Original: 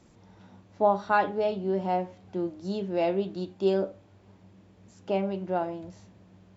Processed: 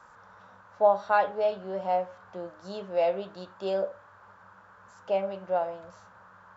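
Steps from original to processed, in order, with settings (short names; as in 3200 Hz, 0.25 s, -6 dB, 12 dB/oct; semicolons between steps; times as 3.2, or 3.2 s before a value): band noise 850–1600 Hz -54 dBFS; resonant low shelf 420 Hz -7 dB, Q 3; gain -2 dB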